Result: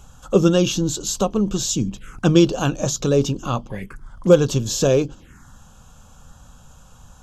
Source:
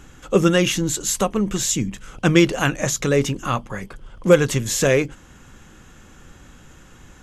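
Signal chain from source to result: envelope phaser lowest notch 280 Hz, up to 2000 Hz, full sweep at -22 dBFS; gain +1.5 dB

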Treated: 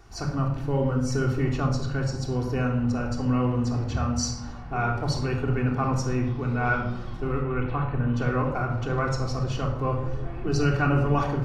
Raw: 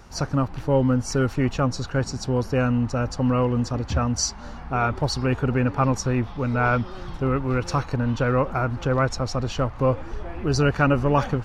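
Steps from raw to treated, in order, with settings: 7.42–8.14 steep low-pass 3400 Hz 48 dB/oct; shoebox room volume 2200 m³, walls furnished, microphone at 3.4 m; gain -7.5 dB

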